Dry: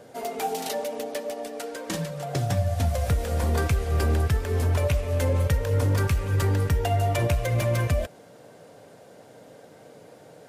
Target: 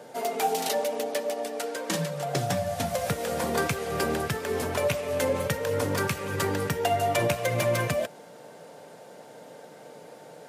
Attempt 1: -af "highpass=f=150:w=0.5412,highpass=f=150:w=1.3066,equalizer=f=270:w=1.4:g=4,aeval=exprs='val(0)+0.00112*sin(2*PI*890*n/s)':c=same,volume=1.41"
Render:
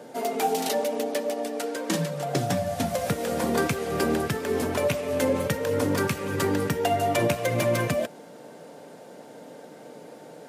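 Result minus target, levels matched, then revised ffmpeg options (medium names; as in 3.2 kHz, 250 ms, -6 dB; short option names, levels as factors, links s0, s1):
250 Hz band +4.0 dB
-af "highpass=f=150:w=0.5412,highpass=f=150:w=1.3066,equalizer=f=270:w=1.4:g=-3.5,aeval=exprs='val(0)+0.00112*sin(2*PI*890*n/s)':c=same,volume=1.41"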